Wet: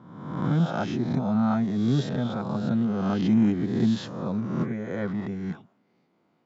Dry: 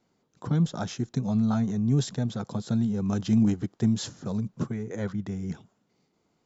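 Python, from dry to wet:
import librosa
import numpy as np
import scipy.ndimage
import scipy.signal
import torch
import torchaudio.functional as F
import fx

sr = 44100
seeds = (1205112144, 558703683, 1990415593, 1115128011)

y = fx.spec_swells(x, sr, rise_s=1.06)
y = fx.bandpass_edges(y, sr, low_hz=150.0, high_hz=2700.0)
y = fx.notch(y, sr, hz=440.0, q=12.0)
y = F.gain(torch.from_numpy(y), 2.0).numpy()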